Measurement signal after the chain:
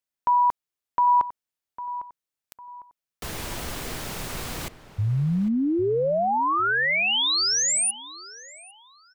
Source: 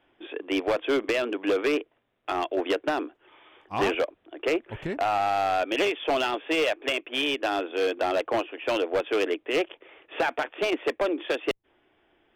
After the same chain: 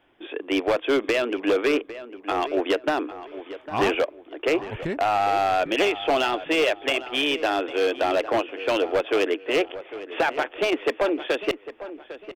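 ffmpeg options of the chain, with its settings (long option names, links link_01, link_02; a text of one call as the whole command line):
ffmpeg -i in.wav -filter_complex "[0:a]asplit=2[link_01][link_02];[link_02]adelay=803,lowpass=frequency=2400:poles=1,volume=-13.5dB,asplit=2[link_03][link_04];[link_04]adelay=803,lowpass=frequency=2400:poles=1,volume=0.34,asplit=2[link_05][link_06];[link_06]adelay=803,lowpass=frequency=2400:poles=1,volume=0.34[link_07];[link_01][link_03][link_05][link_07]amix=inputs=4:normalize=0,volume=3dB" out.wav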